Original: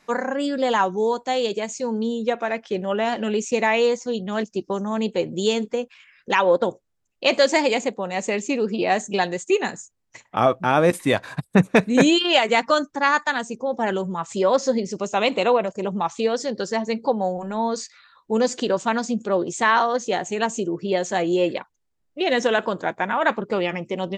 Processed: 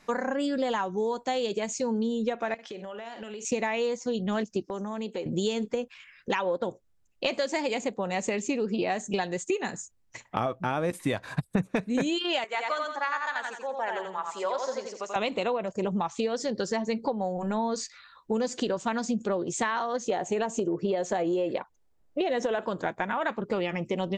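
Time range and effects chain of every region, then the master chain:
2.54–3.45 HPF 530 Hz 6 dB/oct + doubler 48 ms -12.5 dB + compressor 10:1, threshold -36 dBFS
4.66–5.26 HPF 220 Hz + compressor 3:1, threshold -33 dBFS
12.44–15.16 HPF 900 Hz + high shelf 2300 Hz -10.5 dB + feedback echo 86 ms, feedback 34%, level -4 dB
20.1–22.64 bell 600 Hz +8.5 dB 2.1 oct + compressor 2.5:1, threshold -15 dBFS
whole clip: compressor 6:1, threshold -26 dBFS; low shelf 110 Hz +8.5 dB

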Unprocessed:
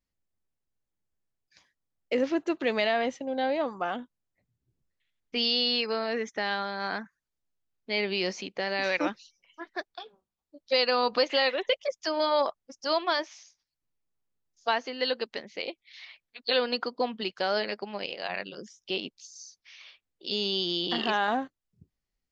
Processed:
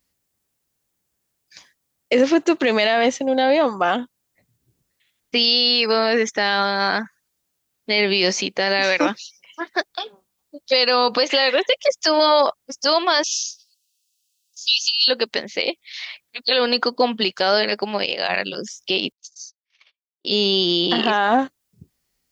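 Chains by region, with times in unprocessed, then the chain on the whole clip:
13.23–15.08 brick-wall FIR high-pass 2500 Hz + bell 5100 Hz +10.5 dB 1.9 oct
19.12–21.39 gate -48 dBFS, range -42 dB + high shelf 3200 Hz -9.5 dB
whole clip: HPF 93 Hz 6 dB/oct; high shelf 5400 Hz +9.5 dB; maximiser +18.5 dB; gain -6 dB

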